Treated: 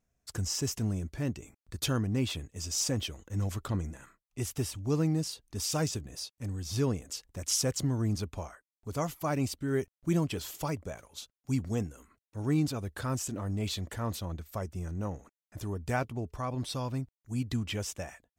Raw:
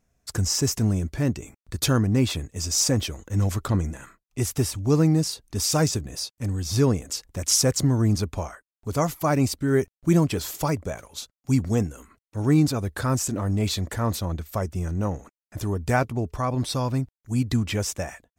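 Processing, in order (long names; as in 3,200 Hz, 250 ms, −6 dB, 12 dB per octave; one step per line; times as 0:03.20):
dynamic equaliser 3,000 Hz, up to +6 dB, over −50 dBFS, Q 3.2
level −9 dB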